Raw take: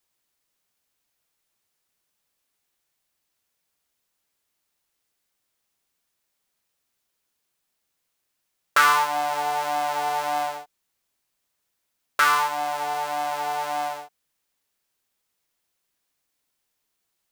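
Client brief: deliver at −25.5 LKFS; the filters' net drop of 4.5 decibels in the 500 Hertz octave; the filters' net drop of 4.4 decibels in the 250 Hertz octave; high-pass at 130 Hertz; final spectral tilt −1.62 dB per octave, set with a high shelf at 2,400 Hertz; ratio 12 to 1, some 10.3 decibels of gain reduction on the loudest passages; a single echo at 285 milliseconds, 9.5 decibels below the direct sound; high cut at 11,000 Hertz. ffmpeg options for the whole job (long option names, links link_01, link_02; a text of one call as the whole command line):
ffmpeg -i in.wav -af "highpass=130,lowpass=11000,equalizer=frequency=250:width_type=o:gain=-3,equalizer=frequency=500:width_type=o:gain=-6.5,highshelf=frequency=2400:gain=5.5,acompressor=threshold=-22dB:ratio=12,aecho=1:1:285:0.335,volume=2dB" out.wav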